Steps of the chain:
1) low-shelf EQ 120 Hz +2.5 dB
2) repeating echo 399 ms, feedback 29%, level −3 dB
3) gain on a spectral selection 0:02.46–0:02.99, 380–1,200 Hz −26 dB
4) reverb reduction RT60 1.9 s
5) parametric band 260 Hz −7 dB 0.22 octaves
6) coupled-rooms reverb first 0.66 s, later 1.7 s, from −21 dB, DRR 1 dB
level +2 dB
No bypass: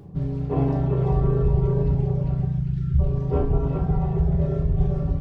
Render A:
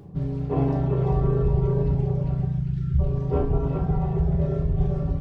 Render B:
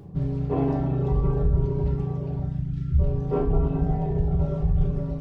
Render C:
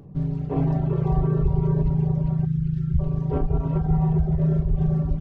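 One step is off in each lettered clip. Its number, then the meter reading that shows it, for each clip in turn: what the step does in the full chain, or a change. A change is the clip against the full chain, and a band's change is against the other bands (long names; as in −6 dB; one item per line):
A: 1, change in integrated loudness −1.0 LU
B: 2, change in momentary loudness spread +1 LU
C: 6, 500 Hz band −4.0 dB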